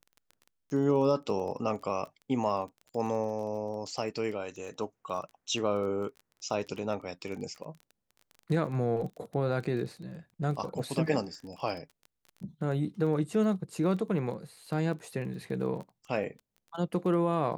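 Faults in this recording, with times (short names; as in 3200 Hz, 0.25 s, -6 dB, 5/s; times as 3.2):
crackle 21/s -39 dBFS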